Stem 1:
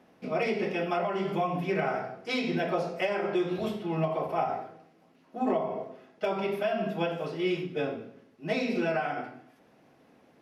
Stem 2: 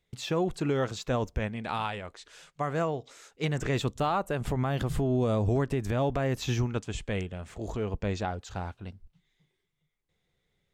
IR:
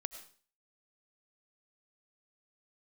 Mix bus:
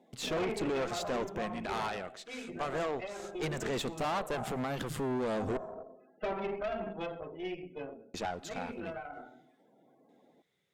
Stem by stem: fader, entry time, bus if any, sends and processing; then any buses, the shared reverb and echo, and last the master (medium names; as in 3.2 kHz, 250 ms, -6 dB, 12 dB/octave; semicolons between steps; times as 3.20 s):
-0.5 dB, 0.00 s, send -19 dB, loudest bins only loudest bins 32; auto duck -11 dB, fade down 1.90 s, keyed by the second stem
+1.5 dB, 0.00 s, muted 5.57–8.14 s, send -11 dB, none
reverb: on, RT60 0.45 s, pre-delay 60 ms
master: high-pass 190 Hz 12 dB/octave; valve stage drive 29 dB, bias 0.65